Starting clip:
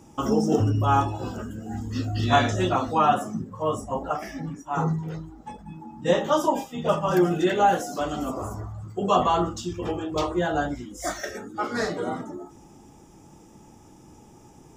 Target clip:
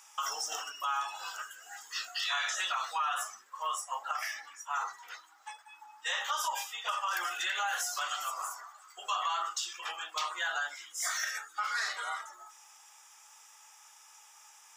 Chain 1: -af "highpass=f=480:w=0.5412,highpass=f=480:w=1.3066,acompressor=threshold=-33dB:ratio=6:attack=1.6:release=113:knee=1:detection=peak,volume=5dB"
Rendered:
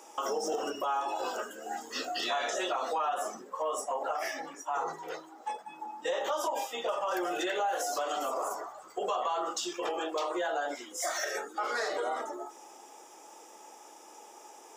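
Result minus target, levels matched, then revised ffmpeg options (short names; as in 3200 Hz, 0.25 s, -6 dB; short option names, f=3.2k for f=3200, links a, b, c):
500 Hz band +17.0 dB
-af "highpass=f=1.2k:w=0.5412,highpass=f=1.2k:w=1.3066,acompressor=threshold=-33dB:ratio=6:attack=1.6:release=113:knee=1:detection=peak,volume=5dB"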